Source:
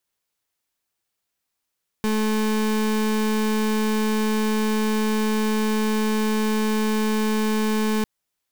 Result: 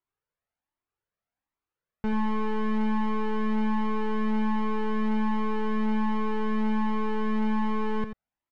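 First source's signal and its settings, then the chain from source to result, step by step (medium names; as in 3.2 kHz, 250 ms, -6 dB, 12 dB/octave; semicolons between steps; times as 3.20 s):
pulse 216 Hz, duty 32% -21.5 dBFS 6.00 s
low-pass 1.7 kHz 12 dB/octave; on a send: delay 87 ms -9.5 dB; on the sum: Shepard-style flanger rising 1.3 Hz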